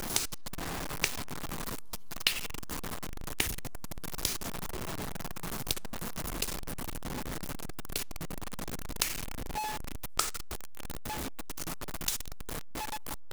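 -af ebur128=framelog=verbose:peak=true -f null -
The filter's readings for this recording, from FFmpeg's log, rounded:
Integrated loudness:
  I:         -36.3 LUFS
  Threshold: -46.2 LUFS
Loudness range:
  LRA:         2.7 LU
  Threshold: -56.3 LUFS
  LRA low:   -37.6 LUFS
  LRA high:  -34.9 LUFS
True peak:
  Peak:       -5.8 dBFS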